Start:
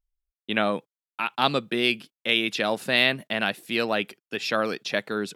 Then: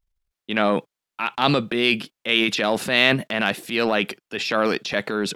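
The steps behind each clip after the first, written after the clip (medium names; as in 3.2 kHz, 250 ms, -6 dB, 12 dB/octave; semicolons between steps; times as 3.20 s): treble shelf 7.8 kHz -7.5 dB; transient shaper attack -4 dB, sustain +8 dB; trim +4.5 dB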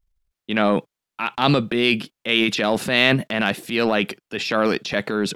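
bass shelf 260 Hz +5.5 dB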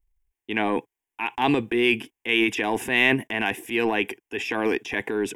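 static phaser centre 870 Hz, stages 8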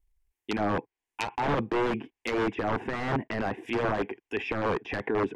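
integer overflow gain 17.5 dB; low-pass that closes with the level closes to 1.3 kHz, closed at -24.5 dBFS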